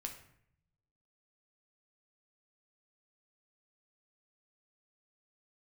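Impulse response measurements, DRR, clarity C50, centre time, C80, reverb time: 3.0 dB, 8.5 dB, 18 ms, 12.0 dB, 0.65 s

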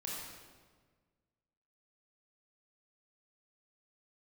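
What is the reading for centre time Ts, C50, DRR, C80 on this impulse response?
95 ms, −1.5 dB, −5.0 dB, 1.0 dB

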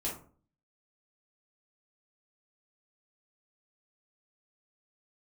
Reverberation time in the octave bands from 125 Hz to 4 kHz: 0.65, 0.55, 0.45, 0.40, 0.30, 0.20 seconds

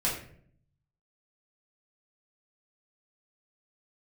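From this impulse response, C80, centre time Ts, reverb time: 9.0 dB, 36 ms, 0.60 s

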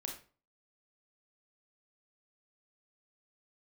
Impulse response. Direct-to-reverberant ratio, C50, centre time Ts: 1.0 dB, 6.5 dB, 24 ms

